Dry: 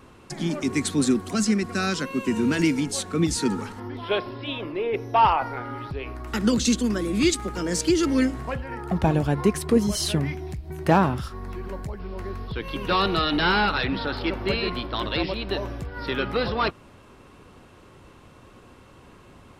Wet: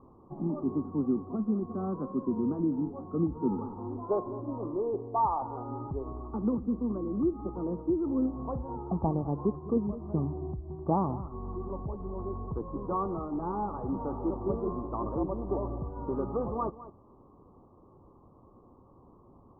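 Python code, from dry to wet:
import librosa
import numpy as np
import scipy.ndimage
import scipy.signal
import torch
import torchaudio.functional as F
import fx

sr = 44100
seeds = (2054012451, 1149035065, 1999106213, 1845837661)

p1 = fx.rider(x, sr, range_db=4, speed_s=0.5)
p2 = scipy.signal.sosfilt(scipy.signal.cheby1(6, 3, 1200.0, 'lowpass', fs=sr, output='sos'), p1)
p3 = p2 + fx.echo_single(p2, sr, ms=206, db=-15.5, dry=0)
y = p3 * librosa.db_to_amplitude(-5.0)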